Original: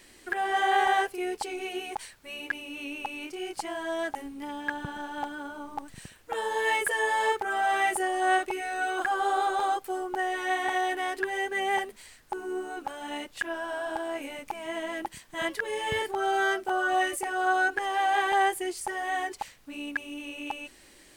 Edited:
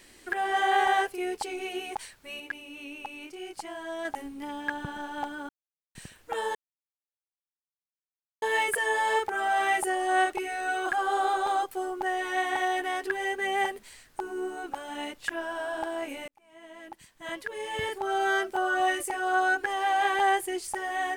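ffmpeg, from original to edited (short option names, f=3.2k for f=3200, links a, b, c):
-filter_complex "[0:a]asplit=7[a][b][c][d][e][f][g];[a]atrim=end=2.402[h];[b]atrim=start=2.398:end=4.052,asetpts=PTS-STARTPTS,volume=-4.5dB[i];[c]atrim=start=4.048:end=5.49,asetpts=PTS-STARTPTS,afade=t=out:st=1.438:d=0.004:c=hsin[j];[d]atrim=start=5.49:end=5.95,asetpts=PTS-STARTPTS,volume=0[k];[e]atrim=start=5.95:end=6.55,asetpts=PTS-STARTPTS,afade=t=in:d=0.004:c=hsin,afade=t=out:st=0.596:d=0.004:c=hsin,apad=pad_dur=1.87[l];[f]atrim=start=6.55:end=14.41,asetpts=PTS-STARTPTS,afade=t=in:d=0.004:c=hsin,afade=t=out:st=7.856:d=0.004:c=hsin[m];[g]atrim=start=14.41,asetpts=PTS-STARTPTS,afade=t=in:d=2.06[n];[h][i]acrossfade=d=0.004:c1=hsin:c2=hsin[o];[j][k][l][m][n]concat=n=5:v=0:a=1[p];[o][p]acrossfade=d=0.004:c1=hsin:c2=hsin"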